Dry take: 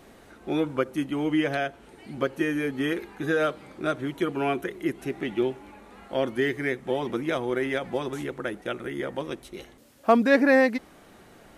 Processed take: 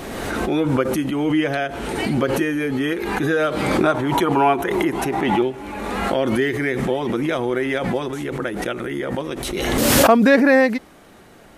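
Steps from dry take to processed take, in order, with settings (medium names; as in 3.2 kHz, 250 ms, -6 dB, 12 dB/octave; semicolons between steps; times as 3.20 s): 3.83–5.42 s: peaking EQ 900 Hz +14 dB 0.63 oct; swell ahead of each attack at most 26 dB/s; trim +4.5 dB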